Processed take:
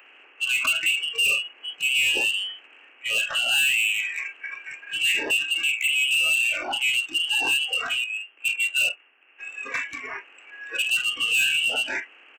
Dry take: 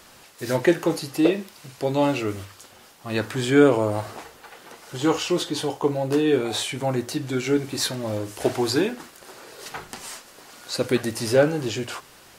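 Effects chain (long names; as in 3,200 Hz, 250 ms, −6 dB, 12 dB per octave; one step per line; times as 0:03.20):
compressor on every frequency bin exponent 0.6
in parallel at −1.5 dB: downward compressor 12 to 1, threshold −25 dBFS, peak gain reduction 16.5 dB
0:08.04–0:09.39: on the sum: noise gate −16 dBFS, range −11 dB
voice inversion scrambler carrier 3,100 Hz
Butterworth high-pass 250 Hz 96 dB per octave
ambience of single reflections 51 ms −13.5 dB, 76 ms −16.5 dB
soft clipping −18 dBFS, distortion −8 dB
noise reduction from a noise print of the clip's start 21 dB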